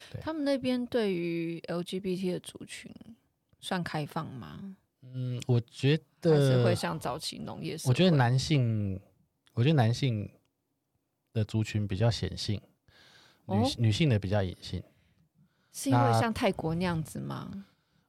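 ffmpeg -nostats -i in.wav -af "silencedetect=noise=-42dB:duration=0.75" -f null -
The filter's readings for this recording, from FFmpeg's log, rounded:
silence_start: 10.27
silence_end: 11.36 | silence_duration: 1.09
silence_start: 12.58
silence_end: 13.48 | silence_duration: 0.90
silence_start: 14.81
silence_end: 15.75 | silence_duration: 0.94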